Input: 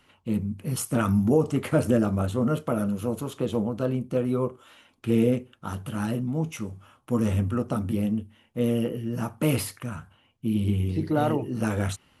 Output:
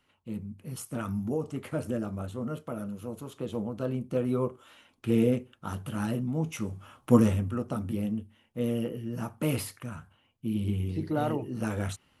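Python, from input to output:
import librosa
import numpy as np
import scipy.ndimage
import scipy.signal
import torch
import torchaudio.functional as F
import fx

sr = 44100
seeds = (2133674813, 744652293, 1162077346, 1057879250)

y = fx.gain(x, sr, db=fx.line((3.06, -10.0), (4.29, -2.5), (6.42, -2.5), (7.15, 6.0), (7.39, -5.0)))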